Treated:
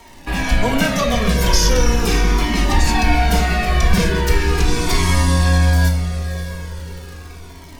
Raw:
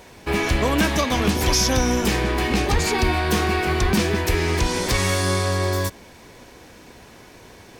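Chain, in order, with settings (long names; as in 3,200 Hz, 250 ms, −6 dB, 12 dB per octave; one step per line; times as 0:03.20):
frequency shifter −15 Hz
feedback delay with all-pass diffusion 602 ms, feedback 46%, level −11.5 dB
rectangular room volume 590 cubic metres, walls furnished, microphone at 1.7 metres
surface crackle 89 per second −30 dBFS
flanger whose copies keep moving one way falling 0.39 Hz
level +4.5 dB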